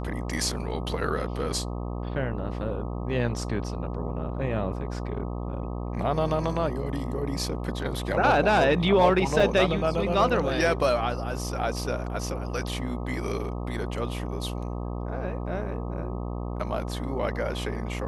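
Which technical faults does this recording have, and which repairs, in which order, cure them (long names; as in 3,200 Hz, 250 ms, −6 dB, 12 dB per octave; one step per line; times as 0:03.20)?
mains buzz 60 Hz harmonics 21 −32 dBFS
0:09.40: drop-out 3.5 ms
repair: hum removal 60 Hz, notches 21
repair the gap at 0:09.40, 3.5 ms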